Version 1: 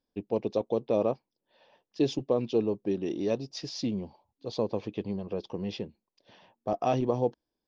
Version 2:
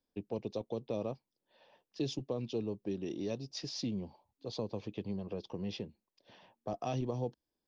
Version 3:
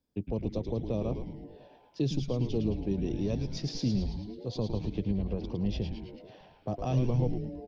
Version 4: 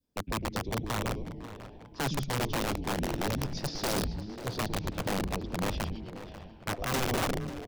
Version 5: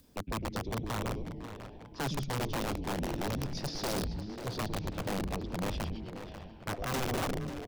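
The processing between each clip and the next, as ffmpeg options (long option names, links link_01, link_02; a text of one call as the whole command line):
ffmpeg -i in.wav -filter_complex "[0:a]acrossover=split=180|3000[link_01][link_02][link_03];[link_02]acompressor=threshold=-39dB:ratio=2[link_04];[link_01][link_04][link_03]amix=inputs=3:normalize=0,volume=-2.5dB" out.wav
ffmpeg -i in.wav -filter_complex "[0:a]equalizer=frequency=96:width_type=o:width=2.9:gain=11.5,asplit=2[link_01][link_02];[link_02]asplit=8[link_03][link_04][link_05][link_06][link_07][link_08][link_09][link_10];[link_03]adelay=109,afreqshift=-140,volume=-5.5dB[link_11];[link_04]adelay=218,afreqshift=-280,volume=-10.1dB[link_12];[link_05]adelay=327,afreqshift=-420,volume=-14.7dB[link_13];[link_06]adelay=436,afreqshift=-560,volume=-19.2dB[link_14];[link_07]adelay=545,afreqshift=-700,volume=-23.8dB[link_15];[link_08]adelay=654,afreqshift=-840,volume=-28.4dB[link_16];[link_09]adelay=763,afreqshift=-980,volume=-33dB[link_17];[link_10]adelay=872,afreqshift=-1120,volume=-37.6dB[link_18];[link_11][link_12][link_13][link_14][link_15][link_16][link_17][link_18]amix=inputs=8:normalize=0[link_19];[link_01][link_19]amix=inputs=2:normalize=0" out.wav
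ffmpeg -i in.wav -filter_complex "[0:a]adynamicequalizer=threshold=0.00562:dfrequency=1100:dqfactor=0.78:tfrequency=1100:tqfactor=0.78:attack=5:release=100:ratio=0.375:range=2:mode=cutabove:tftype=bell,aeval=exprs='(mod(16.8*val(0)+1,2)-1)/16.8':channel_layout=same,asplit=2[link_01][link_02];[link_02]adelay=541,lowpass=frequency=4700:poles=1,volume=-14dB,asplit=2[link_03][link_04];[link_04]adelay=541,lowpass=frequency=4700:poles=1,volume=0.54,asplit=2[link_05][link_06];[link_06]adelay=541,lowpass=frequency=4700:poles=1,volume=0.54,asplit=2[link_07][link_08];[link_08]adelay=541,lowpass=frequency=4700:poles=1,volume=0.54,asplit=2[link_09][link_10];[link_10]adelay=541,lowpass=frequency=4700:poles=1,volume=0.54[link_11];[link_01][link_03][link_05][link_07][link_09][link_11]amix=inputs=6:normalize=0" out.wav
ffmpeg -i in.wav -af "acompressor=mode=upward:threshold=-46dB:ratio=2.5,asoftclip=type=tanh:threshold=-28.5dB" out.wav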